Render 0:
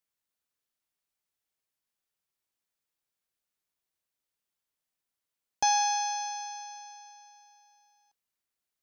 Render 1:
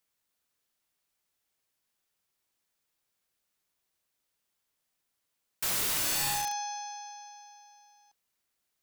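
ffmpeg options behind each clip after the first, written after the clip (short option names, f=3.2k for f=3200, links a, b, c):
-af "aeval=exprs='(mod(37.6*val(0)+1,2)-1)/37.6':c=same,volume=6.5dB"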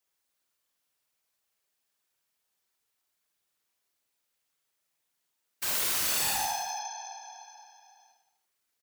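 -filter_complex "[0:a]lowshelf=f=250:g=-6,afftfilt=real='hypot(re,im)*cos(2*PI*random(0))':imag='hypot(re,im)*sin(2*PI*random(1))':win_size=512:overlap=0.75,asplit=2[a][b];[b]aecho=0:1:50|107.5|173.6|249.7|337.1:0.631|0.398|0.251|0.158|0.1[c];[a][c]amix=inputs=2:normalize=0,volume=5dB"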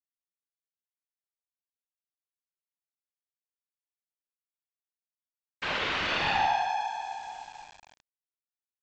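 -af "lowpass=f=3.2k:w=0.5412,lowpass=f=3.2k:w=1.3066,aresample=16000,aeval=exprs='val(0)*gte(abs(val(0)),0.00211)':c=same,aresample=44100,volume=7.5dB"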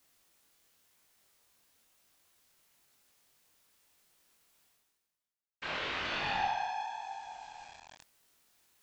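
-af "areverse,acompressor=mode=upward:threshold=-36dB:ratio=2.5,areverse,flanger=delay=20:depth=5.8:speed=0.97,volume=-3.5dB"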